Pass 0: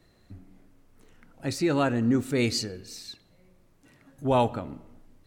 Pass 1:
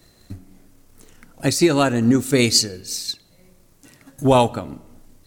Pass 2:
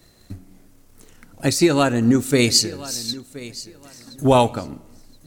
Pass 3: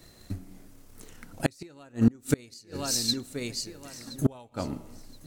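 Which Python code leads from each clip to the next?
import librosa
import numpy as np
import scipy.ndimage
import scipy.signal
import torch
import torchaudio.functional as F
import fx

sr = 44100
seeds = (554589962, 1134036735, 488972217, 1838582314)

y1 = fx.transient(x, sr, attack_db=6, sustain_db=-2)
y1 = fx.bass_treble(y1, sr, bass_db=0, treble_db=11)
y1 = y1 * librosa.db_to_amplitude(6.0)
y2 = fx.echo_feedback(y1, sr, ms=1023, feedback_pct=22, wet_db=-18)
y3 = fx.gate_flip(y2, sr, shuts_db=-10.0, range_db=-33)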